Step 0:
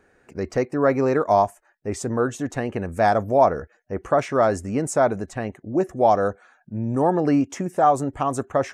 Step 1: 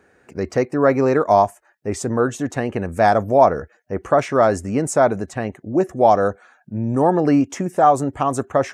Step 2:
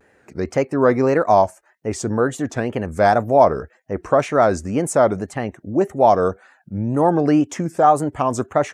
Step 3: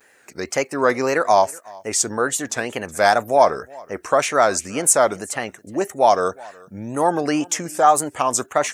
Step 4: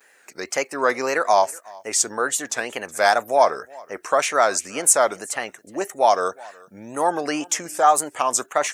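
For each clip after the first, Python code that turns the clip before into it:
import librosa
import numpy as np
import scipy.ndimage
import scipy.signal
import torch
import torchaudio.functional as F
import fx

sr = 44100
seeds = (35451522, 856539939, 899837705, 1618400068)

y1 = scipy.signal.sosfilt(scipy.signal.butter(2, 60.0, 'highpass', fs=sr, output='sos'), x)
y1 = y1 * librosa.db_to_amplitude(3.5)
y2 = fx.wow_flutter(y1, sr, seeds[0], rate_hz=2.1, depth_cents=140.0)
y3 = fx.tilt_eq(y2, sr, slope=4.0)
y3 = y3 + 10.0 ** (-24.0 / 20.0) * np.pad(y3, (int(369 * sr / 1000.0), 0))[:len(y3)]
y3 = y3 * librosa.db_to_amplitude(1.0)
y4 = fx.highpass(y3, sr, hz=530.0, slope=6)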